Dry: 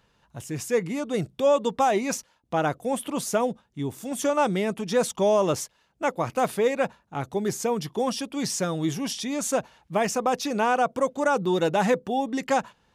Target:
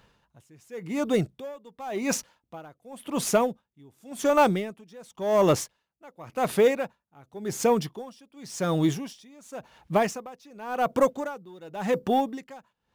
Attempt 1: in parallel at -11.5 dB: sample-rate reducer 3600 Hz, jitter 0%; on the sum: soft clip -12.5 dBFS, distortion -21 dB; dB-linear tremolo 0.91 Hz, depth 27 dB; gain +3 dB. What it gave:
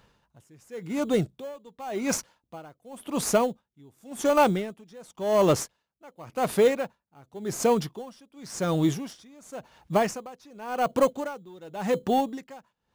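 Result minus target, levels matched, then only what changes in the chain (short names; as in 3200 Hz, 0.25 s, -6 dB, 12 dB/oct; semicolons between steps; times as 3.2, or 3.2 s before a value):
sample-rate reducer: distortion +7 dB
change: sample-rate reducer 13000 Hz, jitter 0%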